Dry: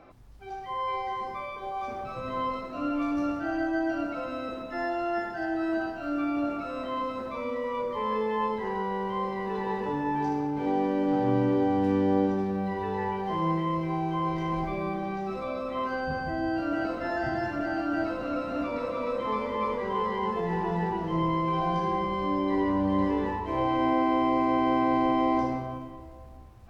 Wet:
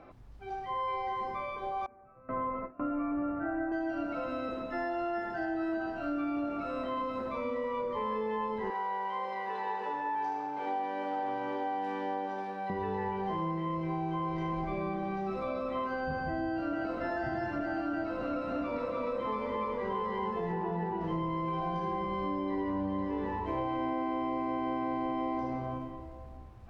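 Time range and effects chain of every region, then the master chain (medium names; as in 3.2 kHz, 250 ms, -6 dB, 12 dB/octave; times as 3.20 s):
1.86–3.72 s: gate with hold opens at -24 dBFS, closes at -30 dBFS + steep low-pass 2.1 kHz
8.70–12.70 s: high-pass 570 Hz + doubling 40 ms -8 dB
20.52–21.01 s: high-pass 350 Hz 6 dB/octave + tilt EQ -2.5 dB/octave
whole clip: compression, threshold -30 dBFS; treble shelf 5.2 kHz -10.5 dB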